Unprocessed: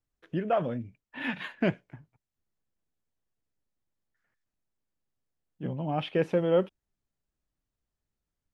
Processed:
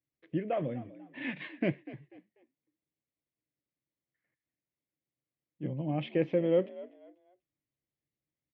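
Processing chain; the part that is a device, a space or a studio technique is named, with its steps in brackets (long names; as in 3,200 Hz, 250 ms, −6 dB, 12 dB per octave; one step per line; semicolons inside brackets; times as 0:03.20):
frequency-shifting delay pedal into a guitar cabinet (echo with shifted repeats 245 ms, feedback 30%, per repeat +59 Hz, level −17.5 dB; loudspeaker in its box 92–4,300 Hz, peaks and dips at 140 Hz +9 dB, 310 Hz +10 dB, 540 Hz +5 dB, 890 Hz −5 dB, 1,400 Hz −9 dB, 2,100 Hz +9 dB)
level −7 dB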